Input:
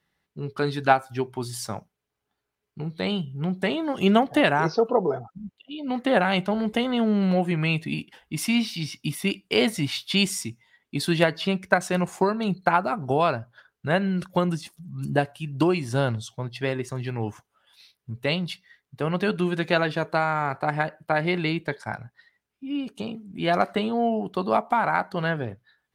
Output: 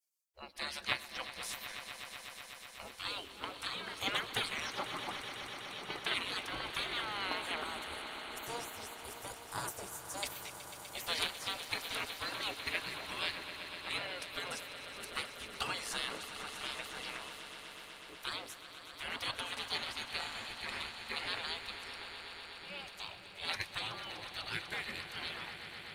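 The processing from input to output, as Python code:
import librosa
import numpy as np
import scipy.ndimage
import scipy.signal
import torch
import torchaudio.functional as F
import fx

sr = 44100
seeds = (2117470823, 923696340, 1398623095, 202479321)

y = fx.spec_gate(x, sr, threshold_db=-25, keep='weak')
y = fx.band_shelf(y, sr, hz=3000.0, db=-15.0, octaves=1.7, at=(7.56, 10.23))
y = fx.echo_swell(y, sr, ms=124, loudest=5, wet_db=-13.5)
y = F.gain(torch.from_numpy(y), 2.5).numpy()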